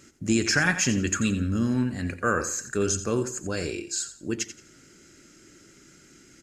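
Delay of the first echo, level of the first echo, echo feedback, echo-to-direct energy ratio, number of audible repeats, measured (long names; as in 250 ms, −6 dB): 87 ms, −12.5 dB, 27%, −12.0 dB, 2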